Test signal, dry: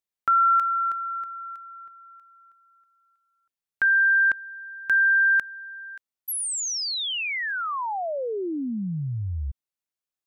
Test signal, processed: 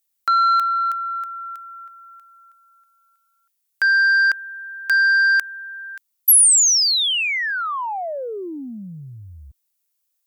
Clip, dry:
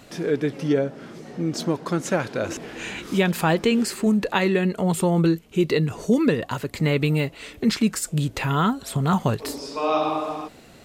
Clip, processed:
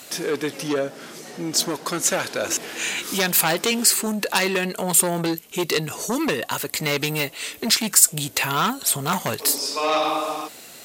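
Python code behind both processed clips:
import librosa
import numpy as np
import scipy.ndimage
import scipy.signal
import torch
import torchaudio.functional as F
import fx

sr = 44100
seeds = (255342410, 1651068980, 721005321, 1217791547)

y = fx.cheby_harmonics(x, sr, harmonics=(5,), levels_db=(-8,), full_scale_db=-5.5)
y = fx.riaa(y, sr, side='recording')
y = y * 10.0 ** (-6.0 / 20.0)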